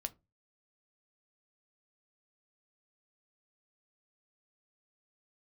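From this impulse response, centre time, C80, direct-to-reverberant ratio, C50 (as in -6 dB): 3 ms, 31.5 dB, 9.0 dB, 23.5 dB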